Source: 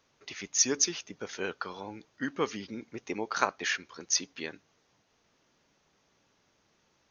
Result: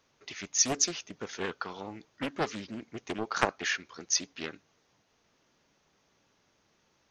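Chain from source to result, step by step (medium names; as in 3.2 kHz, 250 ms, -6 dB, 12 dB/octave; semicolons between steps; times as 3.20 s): loudspeaker Doppler distortion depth 0.66 ms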